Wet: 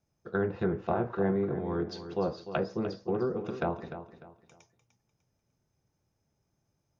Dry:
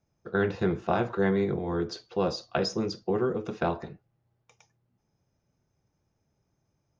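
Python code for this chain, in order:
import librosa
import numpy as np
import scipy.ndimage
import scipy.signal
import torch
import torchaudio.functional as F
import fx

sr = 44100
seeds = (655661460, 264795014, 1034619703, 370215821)

y = fx.high_shelf(x, sr, hz=4900.0, db=4.5)
y = fx.env_lowpass_down(y, sr, base_hz=1200.0, full_db=-22.5)
y = fx.echo_feedback(y, sr, ms=299, feedback_pct=31, wet_db=-11.5)
y = y * librosa.db_to_amplitude(-3.0)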